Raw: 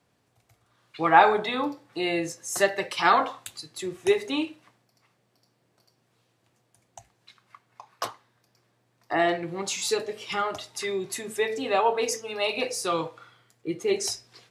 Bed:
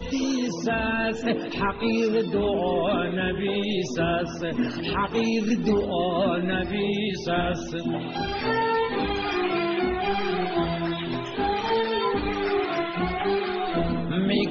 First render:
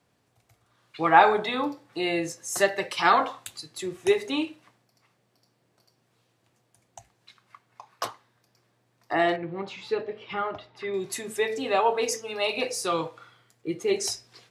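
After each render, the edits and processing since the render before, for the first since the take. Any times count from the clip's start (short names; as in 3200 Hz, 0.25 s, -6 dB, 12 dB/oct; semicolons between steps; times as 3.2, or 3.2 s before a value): 9.36–10.94 air absorption 380 m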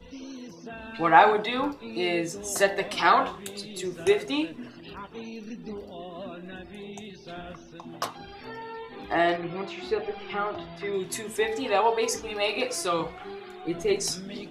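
add bed -15.5 dB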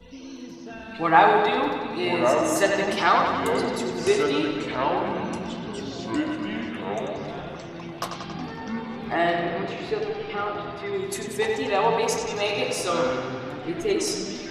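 on a send: analogue delay 92 ms, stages 4096, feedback 71%, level -6 dB; on the sum: echoes that change speed 0.714 s, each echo -5 st, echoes 3, each echo -6 dB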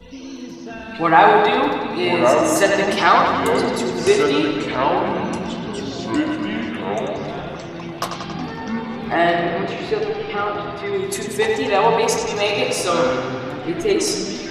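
gain +6 dB; limiter -1 dBFS, peak gain reduction 3 dB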